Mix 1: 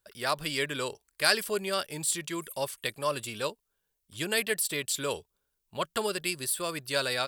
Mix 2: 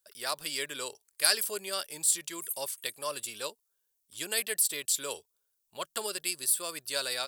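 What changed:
speech -6.0 dB; master: add tone controls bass -11 dB, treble +10 dB

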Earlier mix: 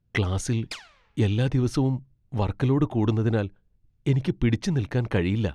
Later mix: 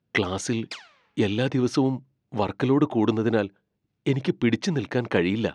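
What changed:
speech +4.5 dB; master: add BPF 220–6800 Hz

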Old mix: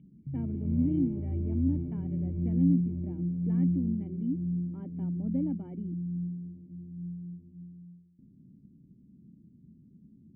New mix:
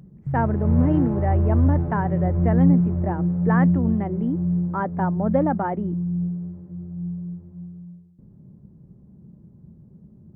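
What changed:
speech +4.0 dB; master: remove vocal tract filter i

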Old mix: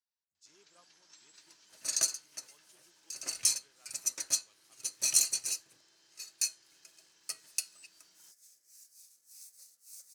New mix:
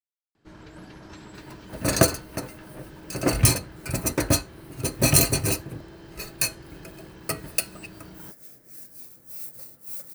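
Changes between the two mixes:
speech: muted; master: remove band-pass 6300 Hz, Q 2.3

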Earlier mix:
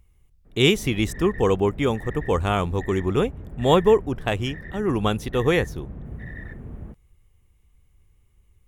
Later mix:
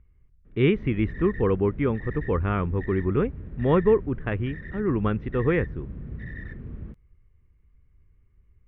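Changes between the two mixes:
speech: add inverse Chebyshev low-pass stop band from 10000 Hz, stop band 80 dB; master: add bell 750 Hz -11.5 dB 0.88 oct

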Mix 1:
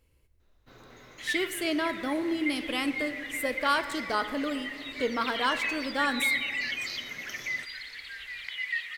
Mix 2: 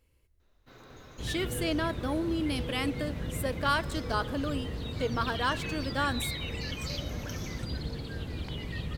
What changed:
speech: send -10.0 dB; second sound: remove resonant high-pass 2000 Hz, resonance Q 7.8

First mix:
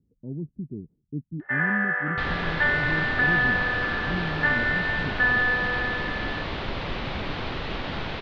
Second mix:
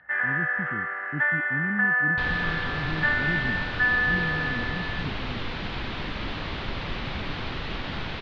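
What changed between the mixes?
first sound: entry -1.40 s; master: add bell 560 Hz -4.5 dB 1.7 oct

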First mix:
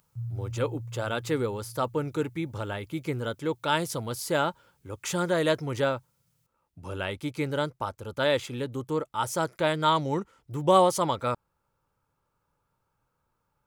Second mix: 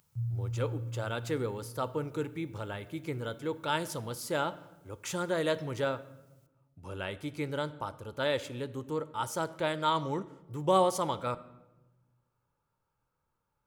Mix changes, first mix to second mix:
speech -6.0 dB; reverb: on, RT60 1.1 s

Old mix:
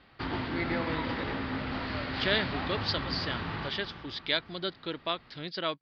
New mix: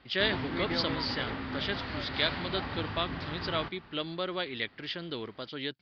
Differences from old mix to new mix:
speech: entry -2.10 s; background: send -11.0 dB

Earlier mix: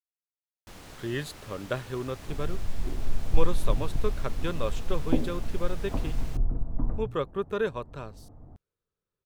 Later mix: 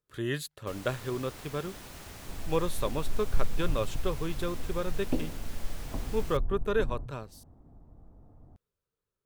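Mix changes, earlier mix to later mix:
speech: entry -0.85 s; second sound -5.5 dB; master: add high shelf 9600 Hz +8 dB

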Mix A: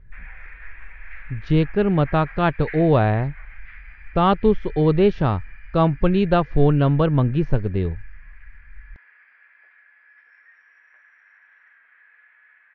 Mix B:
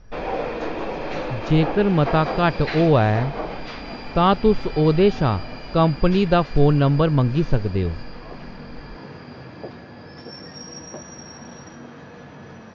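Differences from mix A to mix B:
background: remove Butterworth band-pass 1900 Hz, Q 2.8; master: remove air absorption 170 m

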